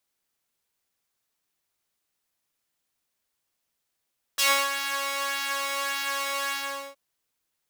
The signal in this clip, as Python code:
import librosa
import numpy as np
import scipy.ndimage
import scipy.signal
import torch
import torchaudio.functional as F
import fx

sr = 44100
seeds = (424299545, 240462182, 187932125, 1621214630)

y = fx.sub_patch_pwm(sr, seeds[0], note=73, wave2='saw', interval_st=0, detune_cents=11, level2_db=-9.0, sub_db=-3.5, noise_db=-14.5, kind='highpass', cutoff_hz=530.0, q=0.88, env_oct=3.0, env_decay_s=0.12, env_sustain_pct=40, attack_ms=15.0, decay_s=0.28, sustain_db=-12.0, release_s=0.45, note_s=2.12, lfo_hz=1.7, width_pct=22, width_swing_pct=16)